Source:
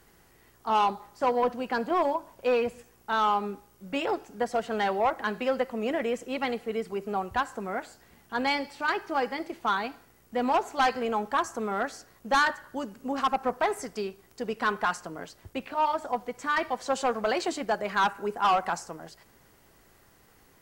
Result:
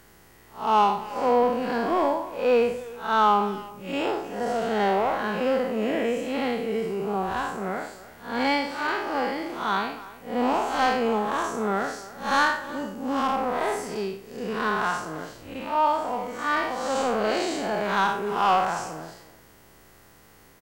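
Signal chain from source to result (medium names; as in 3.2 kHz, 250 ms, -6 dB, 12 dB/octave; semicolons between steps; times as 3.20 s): spectral blur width 161 ms; speakerphone echo 300 ms, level -16 dB; trim +7.5 dB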